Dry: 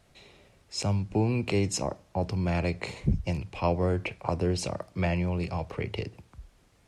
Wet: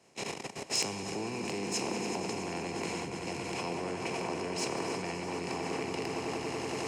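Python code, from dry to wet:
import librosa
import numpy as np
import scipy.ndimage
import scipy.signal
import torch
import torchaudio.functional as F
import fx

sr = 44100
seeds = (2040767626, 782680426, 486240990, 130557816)

y = fx.bin_compress(x, sr, power=0.4)
y = fx.dynamic_eq(y, sr, hz=580.0, q=4.8, threshold_db=-40.0, ratio=4.0, max_db=-5)
y = fx.echo_swell(y, sr, ms=94, loudest=5, wet_db=-10.0)
y = fx.level_steps(y, sr, step_db=16)
y = scipy.signal.sosfilt(scipy.signal.butter(2, 230.0, 'highpass', fs=sr, output='sos'), y)
y = fx.notch(y, sr, hz=590.0, q=12.0)
y = np.clip(y, -10.0 ** (-25.5 / 20.0), 10.0 ** (-25.5 / 20.0))
y = fx.band_widen(y, sr, depth_pct=70)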